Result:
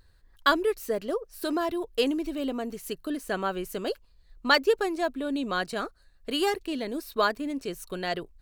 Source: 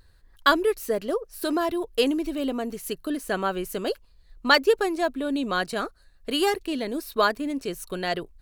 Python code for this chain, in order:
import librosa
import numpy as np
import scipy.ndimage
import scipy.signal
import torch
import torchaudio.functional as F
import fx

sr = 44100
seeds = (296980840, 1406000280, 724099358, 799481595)

y = fx.peak_eq(x, sr, hz=11000.0, db=-5.0, octaves=0.21)
y = y * 10.0 ** (-3.0 / 20.0)